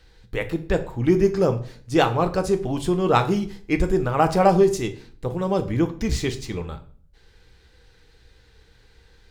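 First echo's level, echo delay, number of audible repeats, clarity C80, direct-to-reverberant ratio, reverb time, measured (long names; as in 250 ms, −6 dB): no echo audible, no echo audible, no echo audible, 18.0 dB, 7.0 dB, 0.50 s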